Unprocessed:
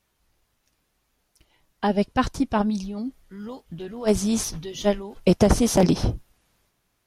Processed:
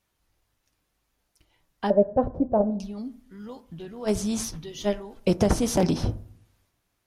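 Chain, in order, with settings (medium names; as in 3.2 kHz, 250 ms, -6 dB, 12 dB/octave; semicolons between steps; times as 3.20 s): 1.90–2.80 s: resonant low-pass 580 Hz, resonance Q 6.1; reverberation RT60 0.65 s, pre-delay 5 ms, DRR 13 dB; trim -4 dB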